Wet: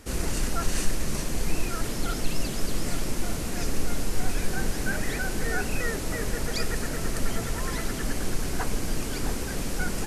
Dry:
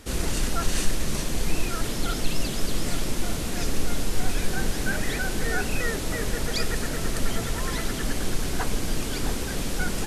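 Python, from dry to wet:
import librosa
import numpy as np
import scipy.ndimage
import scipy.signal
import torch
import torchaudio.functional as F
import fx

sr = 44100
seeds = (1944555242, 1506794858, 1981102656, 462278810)

y = fx.peak_eq(x, sr, hz=3500.0, db=-5.0, octaves=0.53)
y = y * 10.0 ** (-1.5 / 20.0)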